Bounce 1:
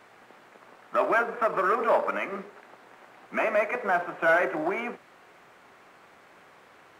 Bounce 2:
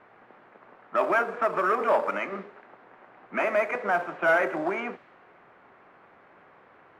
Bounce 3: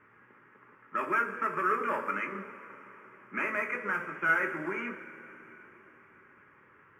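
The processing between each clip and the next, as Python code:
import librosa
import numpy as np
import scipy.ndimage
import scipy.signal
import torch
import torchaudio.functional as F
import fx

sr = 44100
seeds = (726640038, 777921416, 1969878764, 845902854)

y1 = fx.env_lowpass(x, sr, base_hz=1800.0, full_db=-21.5)
y2 = fx.fixed_phaser(y1, sr, hz=1700.0, stages=4)
y2 = fx.rev_double_slope(y2, sr, seeds[0], early_s=0.21, late_s=4.2, knee_db=-20, drr_db=3.0)
y2 = y2 * 10.0 ** (-2.5 / 20.0)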